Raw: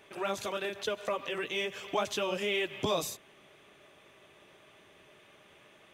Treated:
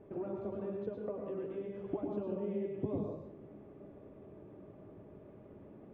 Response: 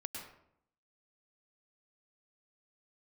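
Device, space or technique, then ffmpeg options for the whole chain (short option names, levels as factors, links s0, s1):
television next door: -filter_complex "[0:a]acompressor=threshold=0.00794:ratio=5,lowpass=370[s0];[1:a]atrim=start_sample=2205[s1];[s0][s1]afir=irnorm=-1:irlink=0,volume=5.01"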